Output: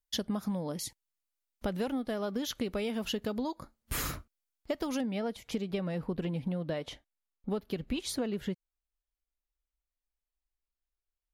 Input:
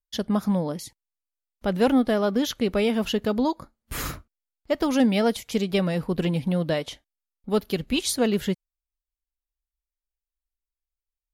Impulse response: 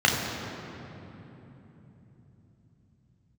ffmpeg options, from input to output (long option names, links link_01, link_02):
-af "asetnsamples=nb_out_samples=441:pad=0,asendcmd='5.01 highshelf g -9.5',highshelf=frequency=3600:gain=3,acompressor=threshold=-30dB:ratio=10"